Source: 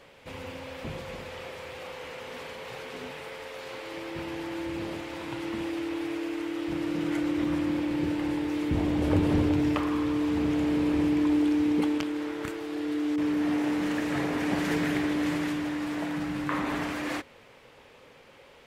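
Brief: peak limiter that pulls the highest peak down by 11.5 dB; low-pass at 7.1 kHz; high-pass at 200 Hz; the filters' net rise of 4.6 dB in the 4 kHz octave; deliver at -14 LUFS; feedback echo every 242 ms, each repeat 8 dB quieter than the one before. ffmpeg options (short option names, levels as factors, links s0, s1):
-af "highpass=200,lowpass=7100,equalizer=f=4000:t=o:g=6.5,alimiter=limit=0.0944:level=0:latency=1,aecho=1:1:242|484|726|968|1210:0.398|0.159|0.0637|0.0255|0.0102,volume=5.01"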